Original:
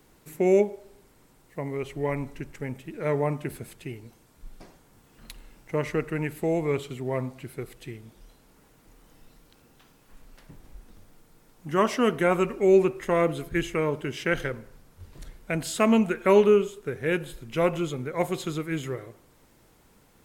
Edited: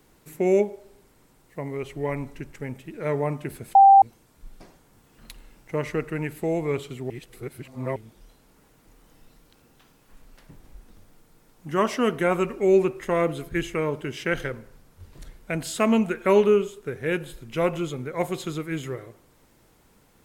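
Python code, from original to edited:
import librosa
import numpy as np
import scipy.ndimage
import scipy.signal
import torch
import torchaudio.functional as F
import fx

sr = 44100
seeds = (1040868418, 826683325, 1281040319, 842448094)

y = fx.edit(x, sr, fx.bleep(start_s=3.75, length_s=0.27, hz=786.0, db=-8.5),
    fx.reverse_span(start_s=7.1, length_s=0.86), tone=tone)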